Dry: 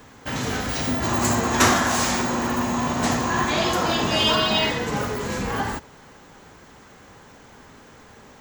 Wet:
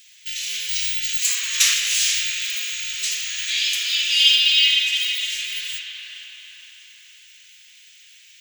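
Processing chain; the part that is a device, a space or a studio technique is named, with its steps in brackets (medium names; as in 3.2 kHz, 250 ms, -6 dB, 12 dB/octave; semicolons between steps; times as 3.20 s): steep high-pass 2.5 kHz 36 dB/octave; dub delay into a spring reverb (filtered feedback delay 465 ms, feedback 62%, low-pass 1.9 kHz, level -5 dB; spring tank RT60 3.3 s, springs 38/43 ms, chirp 75 ms, DRR -2.5 dB); 1.27–1.74 s: peaking EQ 1.1 kHz +13 dB 0.85 oct; trim +6 dB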